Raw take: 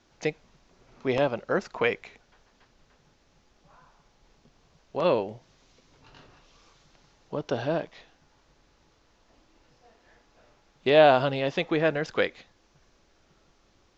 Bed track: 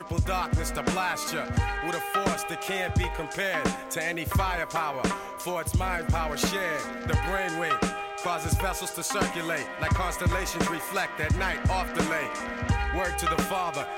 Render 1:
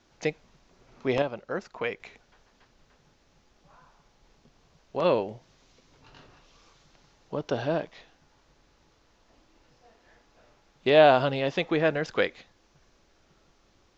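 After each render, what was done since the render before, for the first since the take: 1.22–2 gain -6 dB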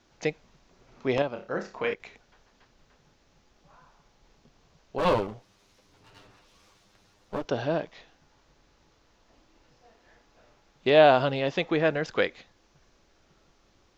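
1.28–1.94 flutter echo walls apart 5.1 m, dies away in 0.31 s; 4.98–7.45 minimum comb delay 9.9 ms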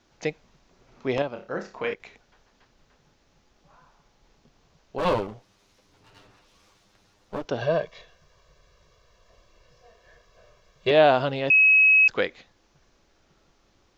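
7.61–10.91 comb 1.8 ms, depth 99%; 11.5–12.08 bleep 2560 Hz -13 dBFS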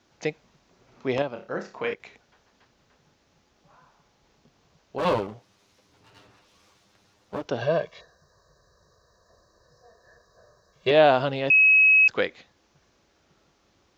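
HPF 64 Hz 12 dB/oct; 8.01–10.73 spectral gain 1900–3800 Hz -28 dB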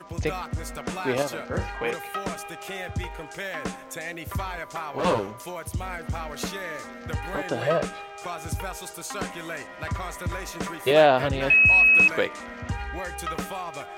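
add bed track -5 dB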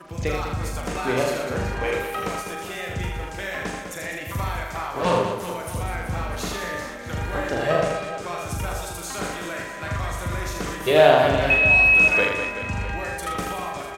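doubler 40 ms -5 dB; reverse bouncing-ball echo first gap 80 ms, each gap 1.5×, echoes 5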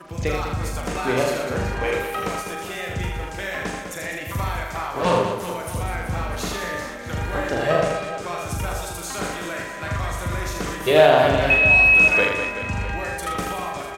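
gain +1.5 dB; limiter -3 dBFS, peak gain reduction 2.5 dB

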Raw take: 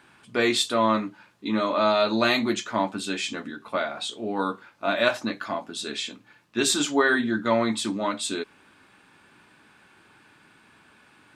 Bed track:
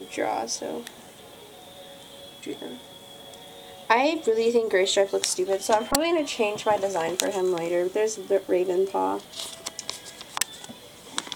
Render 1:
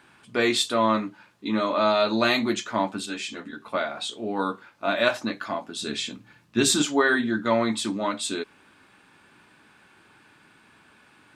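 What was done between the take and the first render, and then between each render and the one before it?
3.06–3.53 ensemble effect; 5.82–6.82 tone controls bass +10 dB, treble +2 dB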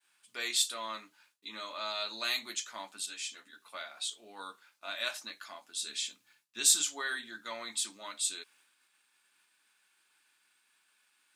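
expander -51 dBFS; differentiator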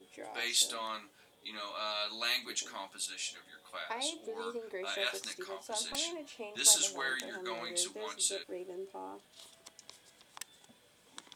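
add bed track -20 dB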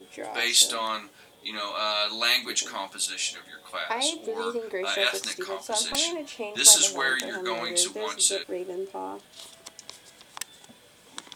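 gain +10 dB; limiter -2 dBFS, peak gain reduction 1 dB

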